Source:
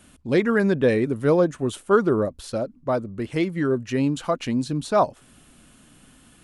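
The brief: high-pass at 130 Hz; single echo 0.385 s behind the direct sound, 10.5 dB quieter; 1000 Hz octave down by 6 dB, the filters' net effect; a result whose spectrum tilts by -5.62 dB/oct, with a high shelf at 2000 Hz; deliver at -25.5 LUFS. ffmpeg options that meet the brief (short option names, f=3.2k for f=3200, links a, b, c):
-af "highpass=130,equalizer=f=1k:t=o:g=-6.5,highshelf=f=2k:g=-7,aecho=1:1:385:0.299,volume=-1dB"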